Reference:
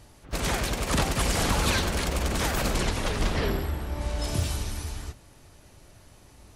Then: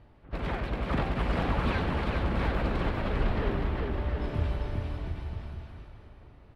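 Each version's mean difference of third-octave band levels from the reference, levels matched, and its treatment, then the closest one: 8.5 dB: air absorption 450 m; on a send: bouncing-ball echo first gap 0.4 s, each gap 0.8×, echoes 5; on the sum: gain -3 dB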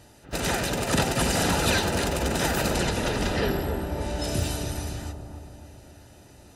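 2.0 dB: notch comb 1100 Hz; analogue delay 0.279 s, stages 2048, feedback 57%, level -6 dB; gain +3 dB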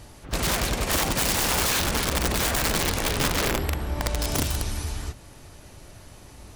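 3.5 dB: in parallel at +1 dB: compressor 4:1, threshold -37 dBFS, peak gain reduction 14.5 dB; on the sum: wrapped overs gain 18 dB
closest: second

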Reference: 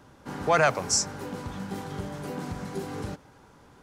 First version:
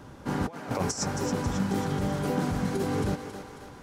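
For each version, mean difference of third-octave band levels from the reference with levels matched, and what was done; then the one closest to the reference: 7.0 dB: low shelf 490 Hz +4.5 dB; negative-ratio compressor -29 dBFS, ratio -0.5; on a send: thinning echo 0.272 s, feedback 55%, high-pass 360 Hz, level -8 dB; on the sum: gain +1.5 dB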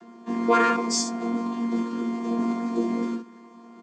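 9.0 dB: chord vocoder bare fifth, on A#3; high shelf 5300 Hz +5 dB; early reflections 21 ms -6 dB, 42 ms -15 dB, 61 ms -6 dB; gain +3.5 dB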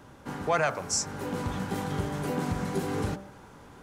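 4.5 dB: bell 4900 Hz -3 dB 0.77 oct; de-hum 65.09 Hz, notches 27; vocal rider within 5 dB 0.5 s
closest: third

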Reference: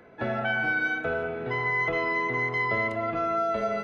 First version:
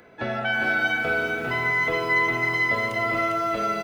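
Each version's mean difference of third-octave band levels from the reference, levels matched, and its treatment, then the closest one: 6.0 dB: high shelf 3000 Hz +12 dB; echo 0.402 s -4.5 dB; lo-fi delay 0.335 s, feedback 55%, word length 7-bit, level -12 dB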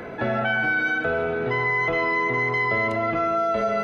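1.5 dB: on a send: thinning echo 0.137 s, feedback 78%, high-pass 420 Hz, level -16 dB; on the sum: fast leveller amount 50%; gain +2.5 dB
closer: second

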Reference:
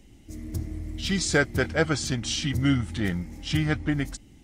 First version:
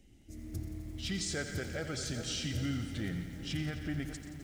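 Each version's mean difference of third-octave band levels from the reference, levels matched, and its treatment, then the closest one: 6.5 dB: split-band echo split 1500 Hz, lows 0.398 s, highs 0.127 s, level -14.5 dB; limiter -18 dBFS, peak gain reduction 9.5 dB; bell 1000 Hz -10 dB 0.38 oct; lo-fi delay 87 ms, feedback 80%, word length 8-bit, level -11 dB; gain -8.5 dB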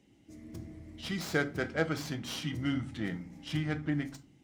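3.5 dB: tracing distortion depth 0.083 ms; HPF 130 Hz 12 dB/oct; high shelf 6700 Hz -10 dB; shoebox room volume 230 m³, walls furnished, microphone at 0.63 m; gain -8 dB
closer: second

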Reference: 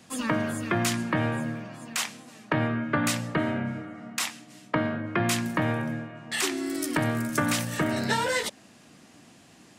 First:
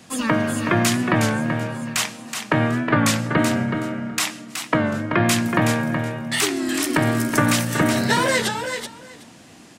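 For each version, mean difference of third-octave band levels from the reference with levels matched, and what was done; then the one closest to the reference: 3.5 dB: on a send: feedback echo 0.373 s, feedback 16%, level -7 dB; on the sum: record warp 33 1/3 rpm, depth 100 cents; gain +6.5 dB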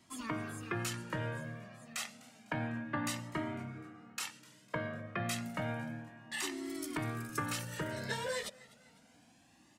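2.5 dB: on a send: feedback echo 0.251 s, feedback 47%, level -21.5 dB; on the sum: cascading flanger rising 0.3 Hz; gain -6.5 dB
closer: second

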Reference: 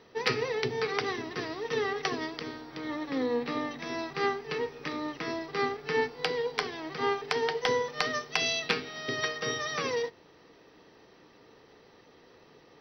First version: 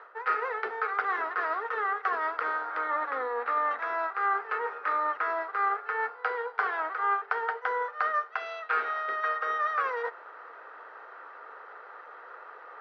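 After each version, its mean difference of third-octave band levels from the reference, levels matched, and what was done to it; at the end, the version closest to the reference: 12.0 dB: HPF 540 Hz 24 dB/oct; reverse; compressor 8:1, threshold -40 dBFS, peak gain reduction 17.5 dB; reverse; soft clip -27.5 dBFS, distortion -29 dB; synth low-pass 1400 Hz, resonance Q 6.7; gain +8.5 dB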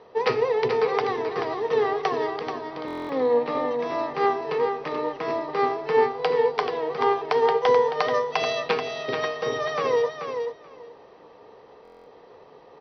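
5.5 dB: LPF 4200 Hz 12 dB/oct; band shelf 690 Hz +10 dB; feedback echo 0.433 s, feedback 15%, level -7 dB; stuck buffer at 2.86/11.83, samples 1024, times 9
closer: second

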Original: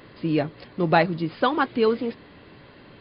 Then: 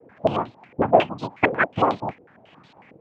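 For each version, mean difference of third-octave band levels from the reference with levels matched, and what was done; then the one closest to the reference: 7.5 dB: transient shaper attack +7 dB, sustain -2 dB; noise vocoder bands 4; stepped low-pass 11 Hz 490–4000 Hz; gain -6 dB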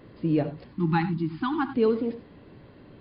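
4.5 dB: tilt shelf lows +6 dB, about 760 Hz; spectral delete 0.69–1.75, 350–770 Hz; non-linear reverb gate 0.11 s rising, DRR 11 dB; gain -5 dB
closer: second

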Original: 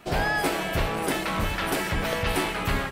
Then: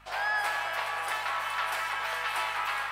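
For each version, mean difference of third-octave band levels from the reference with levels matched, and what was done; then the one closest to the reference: 9.5 dB: HPF 920 Hz 24 dB/oct; tilt -3 dB/oct; hum 50 Hz, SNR 27 dB; on a send: echo with dull and thin repeats by turns 0.209 s, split 2000 Hz, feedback 71%, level -5 dB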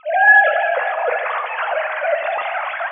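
24.5 dB: sine-wave speech; LPF 2200 Hz 12 dB/oct; plate-style reverb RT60 2.4 s, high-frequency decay 0.8×, DRR 5.5 dB; gain +8.5 dB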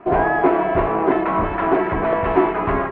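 14.0 dB: LPF 2200 Hz 24 dB/oct; small resonant body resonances 370/690/990 Hz, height 15 dB, ringing for 25 ms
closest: first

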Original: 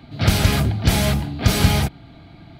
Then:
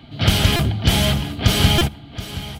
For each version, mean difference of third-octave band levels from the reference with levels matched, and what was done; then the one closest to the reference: 3.5 dB: bell 3100 Hz +10.5 dB 0.28 oct; echo 0.725 s -14 dB; stuck buffer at 0.56/1.78, samples 128, times 10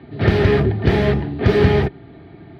6.0 dB: HPF 66 Hz; air absorption 340 m; small resonant body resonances 400/1800 Hz, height 16 dB, ringing for 50 ms; gain +1.5 dB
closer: first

